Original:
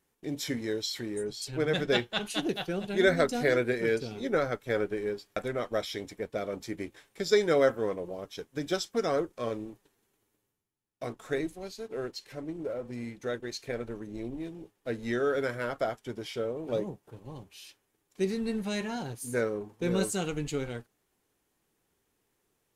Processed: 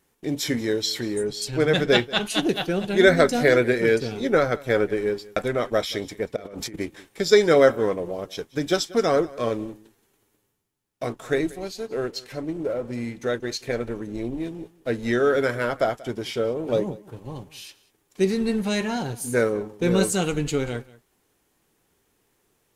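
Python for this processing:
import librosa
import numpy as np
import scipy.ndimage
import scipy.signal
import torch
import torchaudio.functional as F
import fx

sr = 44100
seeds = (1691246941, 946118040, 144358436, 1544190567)

y = fx.over_compress(x, sr, threshold_db=-45.0, ratio=-1.0, at=(6.36, 6.76))
y = y + 10.0 ** (-21.0 / 20.0) * np.pad(y, (int(185 * sr / 1000.0), 0))[:len(y)]
y = y * librosa.db_to_amplitude(8.0)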